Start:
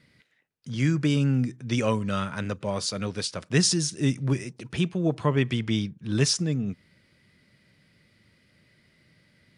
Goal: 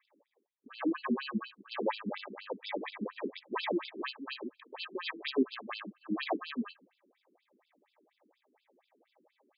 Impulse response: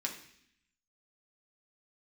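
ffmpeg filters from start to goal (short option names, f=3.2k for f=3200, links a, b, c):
-filter_complex "[0:a]acrusher=samples=31:mix=1:aa=0.000001,asplit=3[a][b][c];[a]afade=t=out:st=0.93:d=0.02[d];[b]afreqshift=-49,afade=t=in:st=0.93:d=0.02,afade=t=out:st=1.66:d=0.02[e];[c]afade=t=in:st=1.66:d=0.02[f];[d][e][f]amix=inputs=3:normalize=0,asplit=2[g][h];[1:a]atrim=start_sample=2205,afade=t=out:st=0.36:d=0.01,atrim=end_sample=16317,adelay=57[i];[h][i]afir=irnorm=-1:irlink=0,volume=-22dB[j];[g][j]amix=inputs=2:normalize=0,afftfilt=real='re*between(b*sr/1024,280*pow(3700/280,0.5+0.5*sin(2*PI*4.2*pts/sr))/1.41,280*pow(3700/280,0.5+0.5*sin(2*PI*4.2*pts/sr))*1.41)':imag='im*between(b*sr/1024,280*pow(3700/280,0.5+0.5*sin(2*PI*4.2*pts/sr))/1.41,280*pow(3700/280,0.5+0.5*sin(2*PI*4.2*pts/sr))*1.41)':win_size=1024:overlap=0.75"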